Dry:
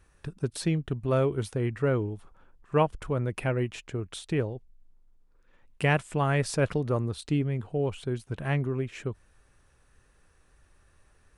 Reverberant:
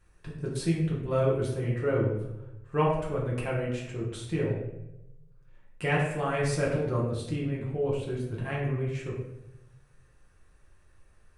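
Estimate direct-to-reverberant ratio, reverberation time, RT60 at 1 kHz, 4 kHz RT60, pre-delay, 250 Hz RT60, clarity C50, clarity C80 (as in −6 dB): −5.5 dB, 0.95 s, 0.80 s, 0.55 s, 6 ms, 1.1 s, 3.0 dB, 5.5 dB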